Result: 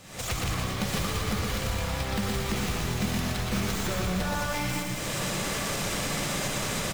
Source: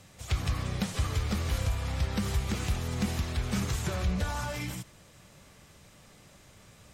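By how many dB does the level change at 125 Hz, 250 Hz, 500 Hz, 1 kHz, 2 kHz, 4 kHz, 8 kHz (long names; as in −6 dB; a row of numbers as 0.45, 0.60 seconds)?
0.0, +4.5, +7.5, +7.5, +8.0, +8.0, +9.0 decibels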